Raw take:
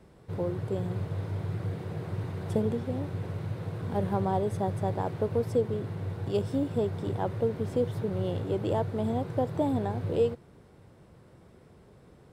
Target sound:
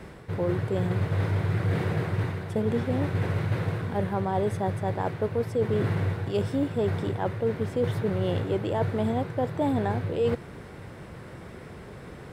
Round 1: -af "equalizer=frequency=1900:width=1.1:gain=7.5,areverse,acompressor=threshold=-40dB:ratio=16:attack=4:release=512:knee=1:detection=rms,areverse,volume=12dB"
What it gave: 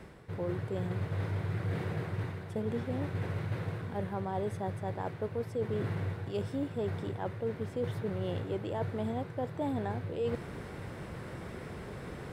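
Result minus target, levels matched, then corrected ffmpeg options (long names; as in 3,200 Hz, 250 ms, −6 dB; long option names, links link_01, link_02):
downward compressor: peak gain reduction +8 dB
-af "equalizer=frequency=1900:width=1.1:gain=7.5,areverse,acompressor=threshold=-31.5dB:ratio=16:attack=4:release=512:knee=1:detection=rms,areverse,volume=12dB"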